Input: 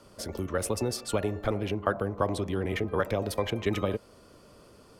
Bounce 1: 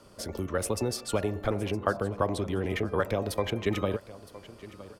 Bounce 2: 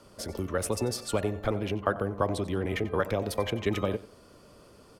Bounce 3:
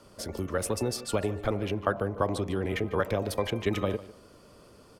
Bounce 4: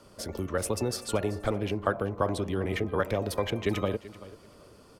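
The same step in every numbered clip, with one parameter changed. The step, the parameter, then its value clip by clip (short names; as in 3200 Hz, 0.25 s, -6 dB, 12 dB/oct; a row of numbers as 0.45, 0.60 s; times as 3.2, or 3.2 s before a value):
feedback echo, time: 964, 92, 149, 384 ms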